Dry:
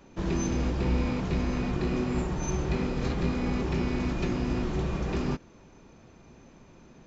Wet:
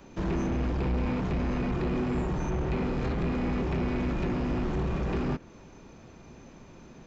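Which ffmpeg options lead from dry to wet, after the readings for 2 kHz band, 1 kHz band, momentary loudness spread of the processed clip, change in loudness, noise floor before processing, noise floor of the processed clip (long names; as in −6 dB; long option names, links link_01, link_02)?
−1.0 dB, +1.0 dB, 1 LU, −0.5 dB, −54 dBFS, −51 dBFS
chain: -filter_complex "[0:a]acrossover=split=580|2900[link_01][link_02][link_03];[link_03]acompressor=threshold=-58dB:ratio=6[link_04];[link_01][link_02][link_04]amix=inputs=3:normalize=0,asoftclip=type=tanh:threshold=-27.5dB,volume=3.5dB"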